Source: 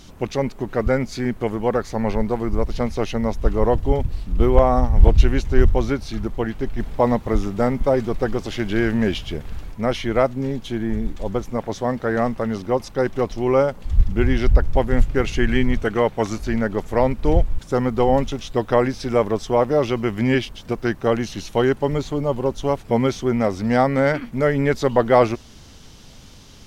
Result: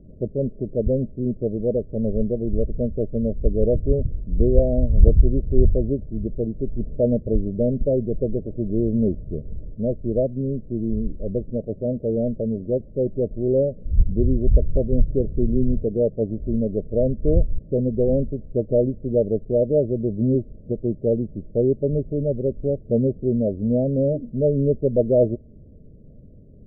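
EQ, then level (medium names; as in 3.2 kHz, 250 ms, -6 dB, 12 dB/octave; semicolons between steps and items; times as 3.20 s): rippled Chebyshev low-pass 630 Hz, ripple 3 dB; distance through air 480 m; +1.5 dB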